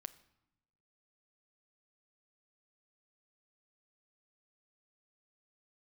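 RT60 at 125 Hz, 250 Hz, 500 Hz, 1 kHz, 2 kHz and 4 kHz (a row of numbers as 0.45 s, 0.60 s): 1.4 s, 1.2 s, 0.85 s, 0.90 s, 0.75 s, 0.65 s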